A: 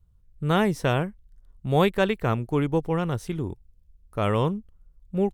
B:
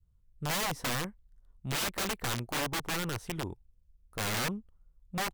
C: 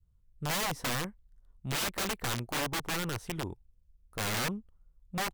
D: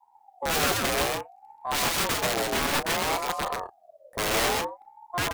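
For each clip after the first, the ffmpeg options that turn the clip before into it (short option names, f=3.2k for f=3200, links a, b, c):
-af "adynamicequalizer=threshold=0.0141:dfrequency=960:dqfactor=0.78:tfrequency=960:tqfactor=0.78:attack=5:release=100:ratio=0.375:range=3.5:mode=boostabove:tftype=bell,aeval=exprs='(mod(8.91*val(0)+1,2)-1)/8.91':c=same,volume=-7.5dB"
-af anull
-filter_complex "[0:a]asplit=2[a][b];[b]aecho=0:1:131.2|163.3:0.794|0.282[c];[a][c]amix=inputs=2:normalize=0,aeval=exprs='val(0)*sin(2*PI*710*n/s+710*0.25/0.59*sin(2*PI*0.59*n/s))':c=same,volume=8dB"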